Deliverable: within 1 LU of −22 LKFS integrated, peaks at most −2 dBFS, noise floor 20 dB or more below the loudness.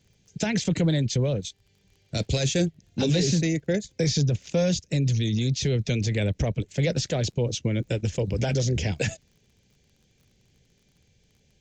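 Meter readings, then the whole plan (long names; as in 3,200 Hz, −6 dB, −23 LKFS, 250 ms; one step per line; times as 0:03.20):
crackle rate 30 per second; integrated loudness −26.0 LKFS; sample peak −13.0 dBFS; target loudness −22.0 LKFS
→ click removal
level +4 dB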